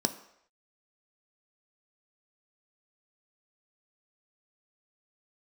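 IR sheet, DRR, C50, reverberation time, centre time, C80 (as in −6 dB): 7.5 dB, 14.0 dB, non-exponential decay, 10 ms, 16.0 dB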